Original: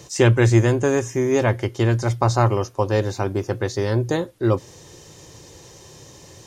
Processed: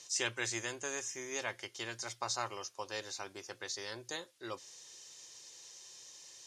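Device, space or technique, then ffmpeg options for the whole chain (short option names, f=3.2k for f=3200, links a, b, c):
piezo pickup straight into a mixer: -af "lowpass=6.1k,aderivative"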